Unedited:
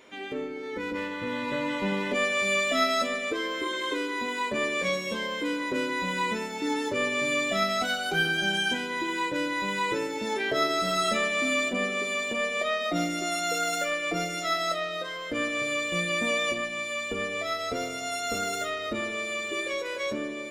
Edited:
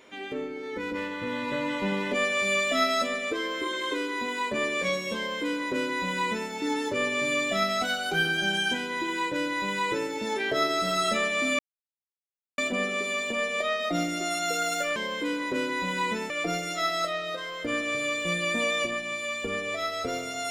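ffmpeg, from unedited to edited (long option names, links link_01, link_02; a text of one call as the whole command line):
ffmpeg -i in.wav -filter_complex "[0:a]asplit=4[link_01][link_02][link_03][link_04];[link_01]atrim=end=11.59,asetpts=PTS-STARTPTS,afade=type=out:start_time=11.586:duration=0.004:curve=hsin,apad=pad_dur=0.99[link_05];[link_02]atrim=start=11.59:end=13.972,asetpts=PTS-STARTPTS,afade=type=in:duration=0.004:curve=hsin[link_06];[link_03]atrim=start=5.158:end=6.502[link_07];[link_04]atrim=start=13.968[link_08];[link_05][link_06]concat=n=2:v=0:a=1[link_09];[link_09][link_07]acrossfade=duration=0.004:curve1=hsin:curve2=hsin[link_10];[link_10][link_08]acrossfade=duration=0.004:curve1=hsin:curve2=hsin" out.wav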